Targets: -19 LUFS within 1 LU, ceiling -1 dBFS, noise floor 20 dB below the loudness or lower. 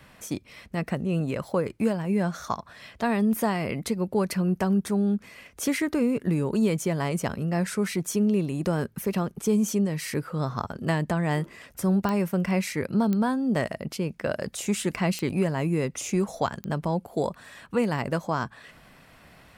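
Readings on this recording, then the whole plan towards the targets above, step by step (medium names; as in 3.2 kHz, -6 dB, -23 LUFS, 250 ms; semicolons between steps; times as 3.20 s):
clicks found 4; loudness -27.0 LUFS; peak level -12.0 dBFS; loudness target -19.0 LUFS
-> de-click; trim +8 dB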